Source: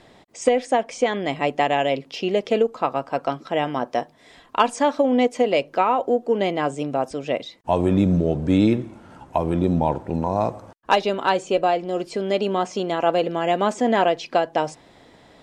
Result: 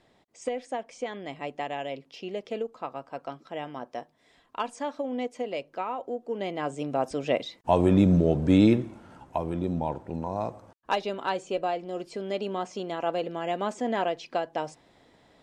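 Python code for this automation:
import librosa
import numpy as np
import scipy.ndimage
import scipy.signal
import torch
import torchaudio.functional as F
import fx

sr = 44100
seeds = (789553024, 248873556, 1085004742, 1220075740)

y = fx.gain(x, sr, db=fx.line((6.19, -13.0), (7.2, -1.5), (8.75, -1.5), (9.54, -9.0)))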